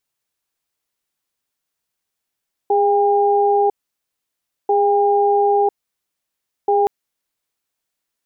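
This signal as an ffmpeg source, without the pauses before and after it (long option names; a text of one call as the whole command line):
ffmpeg -f lavfi -i "aevalsrc='0.178*(sin(2*PI*409*t)+sin(2*PI*805*t))*clip(min(mod(t,1.99),1-mod(t,1.99))/0.005,0,1)':duration=4.17:sample_rate=44100" out.wav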